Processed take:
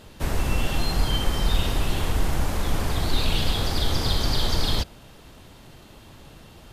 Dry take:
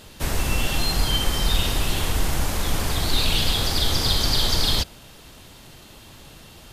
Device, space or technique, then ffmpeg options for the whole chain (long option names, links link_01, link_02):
behind a face mask: -af "highshelf=frequency=2300:gain=-8"